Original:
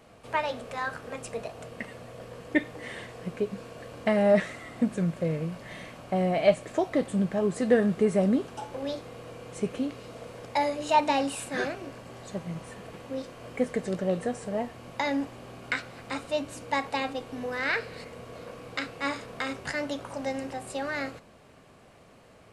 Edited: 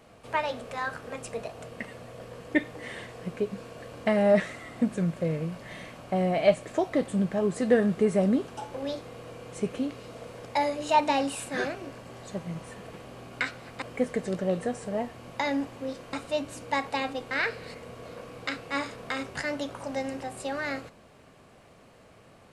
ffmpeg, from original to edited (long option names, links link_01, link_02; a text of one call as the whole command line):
ffmpeg -i in.wav -filter_complex "[0:a]asplit=6[link_01][link_02][link_03][link_04][link_05][link_06];[link_01]atrim=end=13.052[link_07];[link_02]atrim=start=15.358:end=16.132[link_08];[link_03]atrim=start=13.418:end=15.362[link_09];[link_04]atrim=start=13.048:end=13.422[link_10];[link_05]atrim=start=16.128:end=17.312[link_11];[link_06]atrim=start=17.608[link_12];[link_07][link_08]acrossfade=duration=0.004:curve1=hsin:curve2=hsin[link_13];[link_13][link_09]acrossfade=duration=0.004:curve1=hsin:curve2=hsin[link_14];[link_14][link_10]acrossfade=duration=0.004:curve1=hsin:curve2=hsin[link_15];[link_15][link_11]acrossfade=duration=0.004:curve1=hsin:curve2=hsin[link_16];[link_16][link_12]acrossfade=duration=0.004:curve1=hsin:curve2=hsin" out.wav